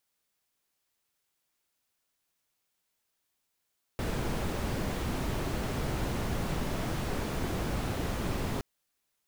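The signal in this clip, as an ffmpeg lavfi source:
ffmpeg -f lavfi -i "anoisesrc=color=brown:amplitude=0.124:duration=4.62:sample_rate=44100:seed=1" out.wav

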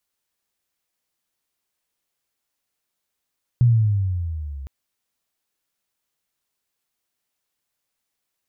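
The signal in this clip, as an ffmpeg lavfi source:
ffmpeg -f lavfi -i "aevalsrc='pow(10,(-10.5-20.5*t/1.06)/20)*sin(2*PI*124*1.06/(-11*log(2)/12)*(exp(-11*log(2)/12*t/1.06)-1))':duration=1.06:sample_rate=44100" out.wav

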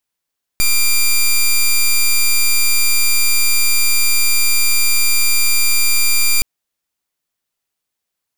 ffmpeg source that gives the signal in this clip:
ffmpeg -f lavfi -i "aevalsrc='0.251*(2*lt(mod(2380*t,1),0.1)-1)':duration=5.82:sample_rate=44100" out.wav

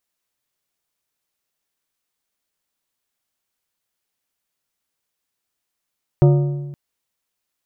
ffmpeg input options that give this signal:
ffmpeg -f lavfi -i "aevalsrc='0.422*pow(10,-3*t/1.31)*sin(2*PI*143*t)+0.2*pow(10,-3*t/0.995)*sin(2*PI*357.5*t)+0.0944*pow(10,-3*t/0.864)*sin(2*PI*572*t)+0.0447*pow(10,-3*t/0.808)*sin(2*PI*715*t)+0.0211*pow(10,-3*t/0.747)*sin(2*PI*929.5*t)+0.01*pow(10,-3*t/0.689)*sin(2*PI*1215.5*t)+0.00473*pow(10,-3*t/0.678)*sin(2*PI*1287*t)':duration=0.52:sample_rate=44100" out.wav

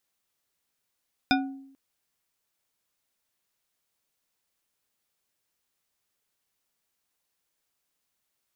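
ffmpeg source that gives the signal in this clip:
ffmpeg -f lavfi -i "aevalsrc='0.1*pow(10,-3*t/0.76)*sin(2*PI*271*t)+0.0891*pow(10,-3*t/0.374)*sin(2*PI*747.1*t)+0.0794*pow(10,-3*t/0.233)*sin(2*PI*1464.5*t)+0.0708*pow(10,-3*t/0.164)*sin(2*PI*2420.8*t)+0.0631*pow(10,-3*t/0.124)*sin(2*PI*3615.1*t)+0.0562*pow(10,-3*t/0.098)*sin(2*PI*5051.4*t)':duration=0.44:sample_rate=44100" out.wav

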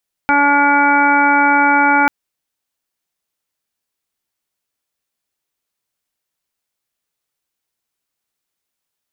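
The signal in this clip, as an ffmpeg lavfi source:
ffmpeg -f lavfi -i "aevalsrc='0.126*sin(2*PI*286*t)+0.0501*sin(2*PI*572*t)+0.224*sin(2*PI*858*t)+0.0531*sin(2*PI*1144*t)+0.2*sin(2*PI*1430*t)+0.0282*sin(2*PI*1716*t)+0.0422*sin(2*PI*2002*t)+0.112*sin(2*PI*2288*t)':duration=1.79:sample_rate=44100" out.wav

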